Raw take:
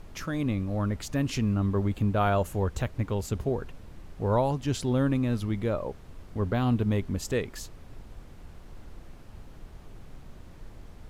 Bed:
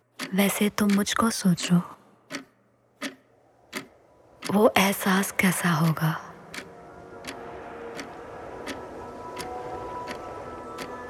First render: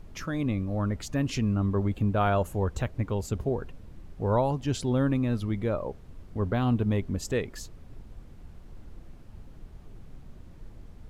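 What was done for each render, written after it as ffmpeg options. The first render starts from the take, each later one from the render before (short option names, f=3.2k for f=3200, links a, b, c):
-af "afftdn=nr=6:nf=-48"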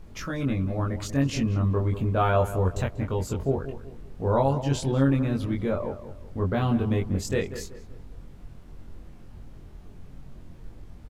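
-filter_complex "[0:a]asplit=2[a][b];[b]adelay=22,volume=-2dB[c];[a][c]amix=inputs=2:normalize=0,asplit=2[d][e];[e]adelay=190,lowpass=f=1.8k:p=1,volume=-11.5dB,asplit=2[f][g];[g]adelay=190,lowpass=f=1.8k:p=1,volume=0.37,asplit=2[h][i];[i]adelay=190,lowpass=f=1.8k:p=1,volume=0.37,asplit=2[j][k];[k]adelay=190,lowpass=f=1.8k:p=1,volume=0.37[l];[f][h][j][l]amix=inputs=4:normalize=0[m];[d][m]amix=inputs=2:normalize=0"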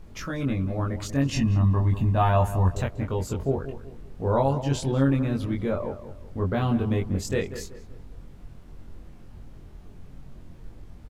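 -filter_complex "[0:a]asettb=1/sr,asplit=3[a][b][c];[a]atrim=end=1.324[d];[b]atrim=start=1.32:end=2.75,asetpts=PTS-STARTPTS,afade=t=in:d=0.004:c=qsin,afade=t=out:st=1.426:d=0.004:c=qsin,aecho=1:1:1.1:0.65,atrim=end_sample=63063[e];[c]atrim=start=2.746[f];[d][e]acrossfade=d=0.004:c1=hsin:c2=qsin[g];[g][f]acrossfade=d=0.004:c1=qsin:c2=hsin"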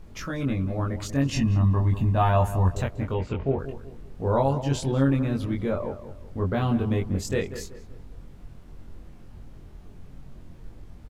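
-filter_complex "[0:a]asettb=1/sr,asplit=3[a][b][c];[a]atrim=end=3.144[d];[b]atrim=start=3.14:end=3.59,asetpts=PTS-STARTPTS,afade=t=in:d=0.004:c=qsin,afade=t=out:st=0.446:d=0.004:c=qsin,lowpass=f=2.5k:t=q:w=2.5[e];[c]atrim=start=3.586[f];[d][e]acrossfade=d=0.004:c1=hsin:c2=qsin[g];[g][f]acrossfade=d=0.004:c1=qsin:c2=hsin"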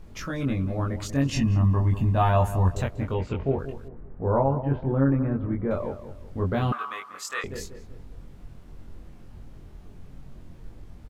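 -filter_complex "[0:a]asettb=1/sr,asplit=3[a][b][c];[a]atrim=end=1.454[d];[b]atrim=start=1.45:end=2.03,asetpts=PTS-STARTPTS,afade=t=in:d=0.004:c=qsin,afade=t=out:st=0.576:d=0.004:c=qsin,bandreject=f=3.8k:w=7.5[e];[c]atrim=start=2.026[f];[d][e]acrossfade=d=0.004:c1=hsin:c2=qsin[g];[g][f]acrossfade=d=0.004:c1=qsin:c2=hsin,asettb=1/sr,asplit=3[h][i][j];[h]atrim=end=3.884[k];[i]atrim=start=3.88:end=5.71,asetpts=PTS-STARTPTS,afade=t=in:d=0.004:c=qsin,afade=t=out:st=1.826:d=0.004:c=qsin,lowpass=f=1.7k:w=0.5412,lowpass=f=1.7k:w=1.3066[l];[j]atrim=start=5.706[m];[k][l]acrossfade=d=0.004:c1=hsin:c2=qsin[n];[n][m]acrossfade=d=0.004:c1=qsin:c2=hsin,asettb=1/sr,asplit=3[o][p][q];[o]atrim=end=6.724[r];[p]atrim=start=6.72:end=7.44,asetpts=PTS-STARTPTS,afade=t=in:d=0.004:c=qsin,afade=t=out:st=0.716:d=0.004:c=qsin,highpass=f=1.2k:t=q:w=13[s];[q]atrim=start=7.436[t];[r][s]acrossfade=d=0.004:c1=hsin:c2=qsin[u];[u][t]acrossfade=d=0.004:c1=qsin:c2=hsin"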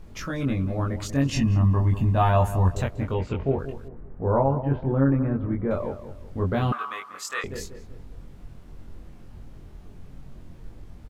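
-af "volume=1dB"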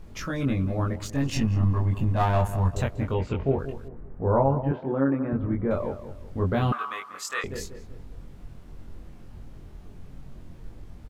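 -filter_complex "[0:a]asettb=1/sr,asplit=3[a][b][c];[a]atrim=end=0.934[d];[b]atrim=start=0.93:end=2.73,asetpts=PTS-STARTPTS,afade=t=in:d=0.004:c=qsin,afade=t=out:st=1.796:d=0.004:c=qsin,aeval=exprs='if(lt(val(0),0),0.447*val(0),val(0))':c=same[e];[c]atrim=start=2.726[f];[d][e]acrossfade=d=0.004:c1=hsin:c2=qsin[g];[g][f]acrossfade=d=0.004:c1=qsin:c2=hsin,asettb=1/sr,asplit=3[h][i][j];[h]atrim=end=4.714[k];[i]atrim=start=4.71:end=5.33,asetpts=PTS-STARTPTS,afade=t=in:d=0.004:c=qsin,afade=t=out:st=0.616:d=0.004:c=qsin,highpass=230[l];[j]atrim=start=5.326[m];[k][l]acrossfade=d=0.004:c1=hsin:c2=qsin[n];[n][m]acrossfade=d=0.004:c1=qsin:c2=hsin"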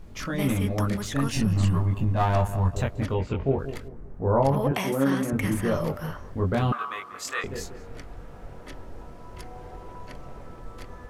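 -filter_complex "[1:a]volume=-9.5dB[a];[0:a][a]amix=inputs=2:normalize=0"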